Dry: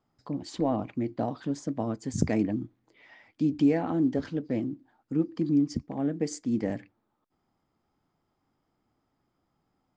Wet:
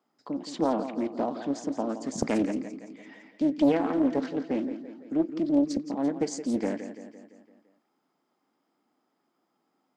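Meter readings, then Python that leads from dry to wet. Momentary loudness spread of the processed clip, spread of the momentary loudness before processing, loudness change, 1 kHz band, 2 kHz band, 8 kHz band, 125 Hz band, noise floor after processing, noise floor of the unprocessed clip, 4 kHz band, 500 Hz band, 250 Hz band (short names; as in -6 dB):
15 LU, 11 LU, +1.0 dB, +3.5 dB, +2.0 dB, +1.5 dB, -9.0 dB, -77 dBFS, -78 dBFS, +2.5 dB, +3.0 dB, +0.5 dB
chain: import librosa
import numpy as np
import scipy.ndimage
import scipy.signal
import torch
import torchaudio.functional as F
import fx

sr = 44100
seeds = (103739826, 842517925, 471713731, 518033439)

p1 = scipy.signal.sosfilt(scipy.signal.butter(4, 220.0, 'highpass', fs=sr, output='sos'), x)
p2 = p1 + fx.echo_feedback(p1, sr, ms=170, feedback_pct=55, wet_db=-11, dry=0)
p3 = fx.doppler_dist(p2, sr, depth_ms=0.59)
y = F.gain(torch.from_numpy(p3), 2.0).numpy()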